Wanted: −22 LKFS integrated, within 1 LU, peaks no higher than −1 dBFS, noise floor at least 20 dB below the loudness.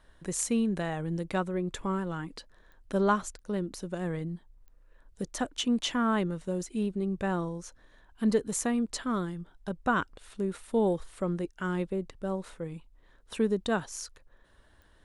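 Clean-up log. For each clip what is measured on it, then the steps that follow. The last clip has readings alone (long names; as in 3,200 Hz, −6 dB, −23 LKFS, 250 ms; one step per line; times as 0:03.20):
number of clicks 4; integrated loudness −31.5 LKFS; sample peak −13.5 dBFS; target loudness −22.0 LKFS
→ click removal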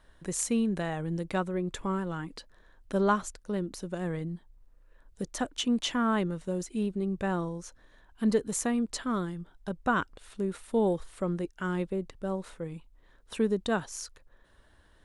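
number of clicks 0; integrated loudness −31.5 LKFS; sample peak −13.5 dBFS; target loudness −22.0 LKFS
→ level +9.5 dB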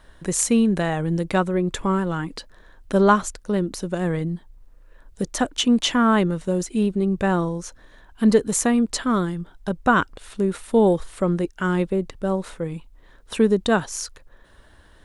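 integrated loudness −22.0 LKFS; sample peak −4.0 dBFS; background noise floor −52 dBFS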